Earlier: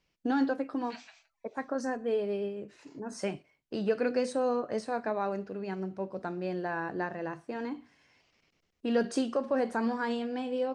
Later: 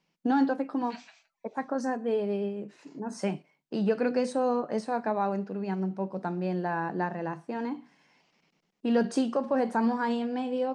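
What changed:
first voice: add peaking EQ 870 Hz +6.5 dB 0.49 oct; master: add resonant low shelf 120 Hz -12 dB, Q 3

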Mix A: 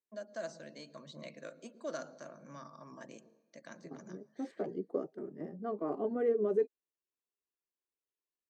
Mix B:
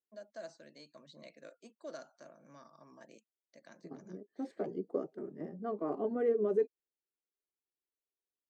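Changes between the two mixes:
first voice -7.5 dB; reverb: off

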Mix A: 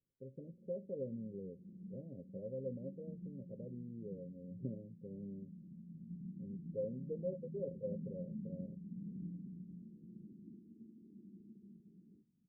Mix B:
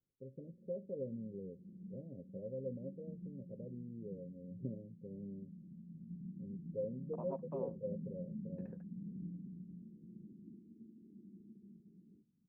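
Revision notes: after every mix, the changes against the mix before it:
second voice: unmuted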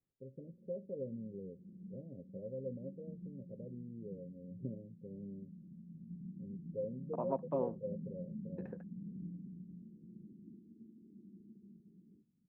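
second voice +9.0 dB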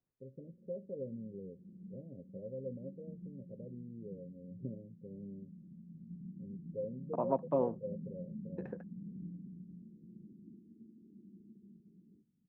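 second voice +4.5 dB

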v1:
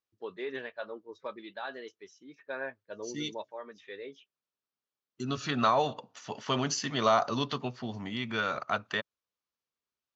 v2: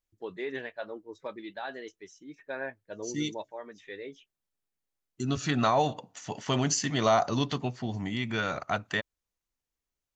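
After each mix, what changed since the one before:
master: remove cabinet simulation 150–5600 Hz, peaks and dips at 170 Hz -7 dB, 310 Hz -6 dB, 740 Hz -4 dB, 1.2 kHz +4 dB, 2 kHz -4 dB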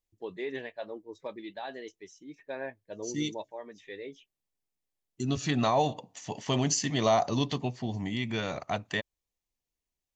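master: add peaking EQ 1.4 kHz -10.5 dB 0.4 oct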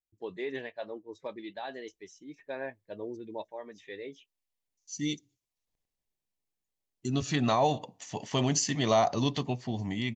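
second voice: entry +1.85 s

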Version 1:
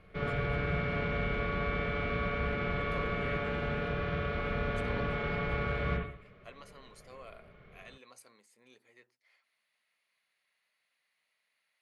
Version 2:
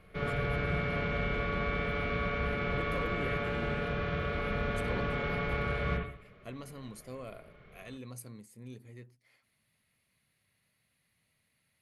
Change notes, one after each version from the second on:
speech: remove high-pass 710 Hz 12 dB/octave; master: remove distance through air 63 m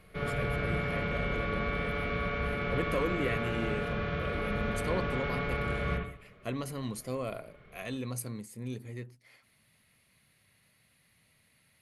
speech +8.5 dB

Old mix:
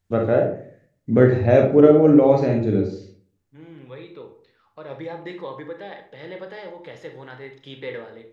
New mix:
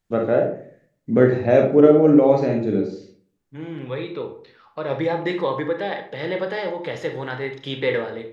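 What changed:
first voice: add peaking EQ 95 Hz -13.5 dB 0.5 oct; second voice +10.5 dB

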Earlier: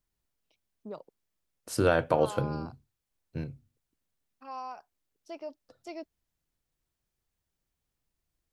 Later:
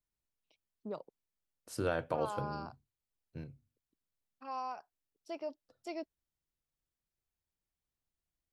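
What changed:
first voice: add band-stop 6.3 kHz, Q 10; second voice -9.5 dB

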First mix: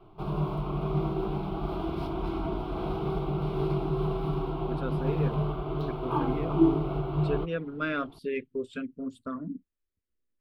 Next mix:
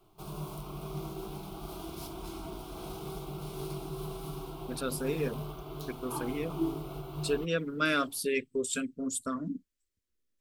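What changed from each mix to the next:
background -11.0 dB; master: remove distance through air 430 m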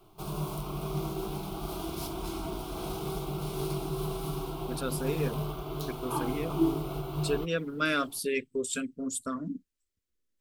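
background +5.5 dB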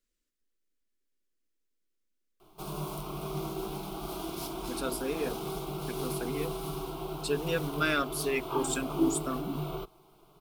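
background: entry +2.40 s; master: add peaking EQ 76 Hz -13 dB 1.3 oct

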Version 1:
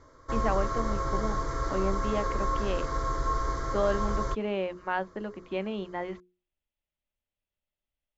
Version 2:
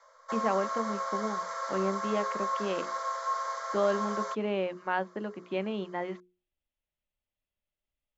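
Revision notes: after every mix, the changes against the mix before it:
background: add steep high-pass 520 Hz 72 dB/octave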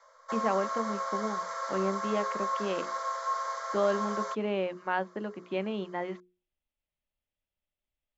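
no change

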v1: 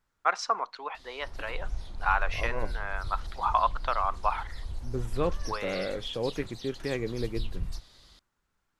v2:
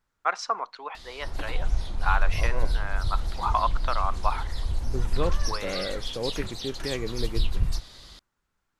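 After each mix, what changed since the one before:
background +9.0 dB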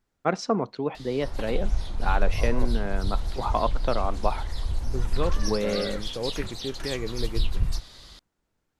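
first voice: remove resonant high-pass 1.1 kHz, resonance Q 1.8

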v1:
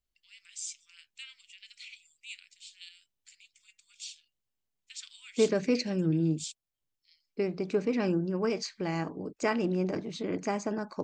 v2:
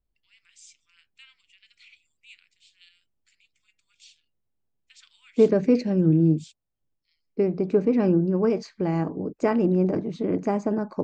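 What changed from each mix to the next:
first voice: add treble shelf 7.4 kHz -8.5 dB; master: add tilt shelf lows +9 dB, about 1.5 kHz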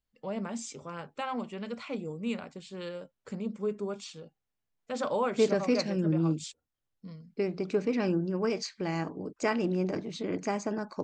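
first voice: remove steep high-pass 2.3 kHz 36 dB/octave; master: add tilt shelf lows -9 dB, about 1.5 kHz

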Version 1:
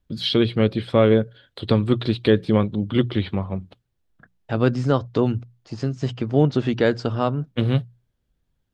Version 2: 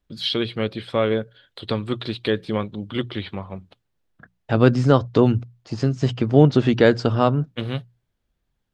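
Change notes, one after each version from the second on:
first voice: add bass shelf 490 Hz -8.5 dB; second voice +4.0 dB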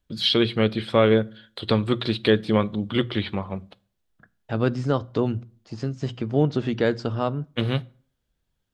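second voice -10.0 dB; reverb: on, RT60 0.50 s

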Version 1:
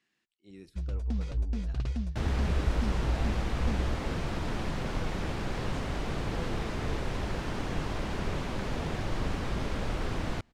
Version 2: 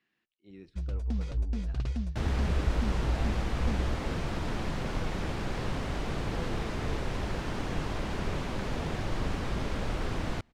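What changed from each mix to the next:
speech: add low-pass 3.5 kHz 12 dB/octave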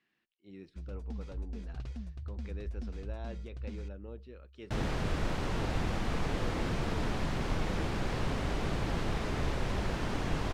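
first sound -9.0 dB; second sound: entry +2.55 s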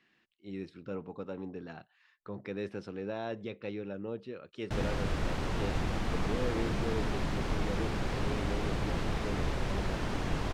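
speech +9.0 dB; first sound: muted

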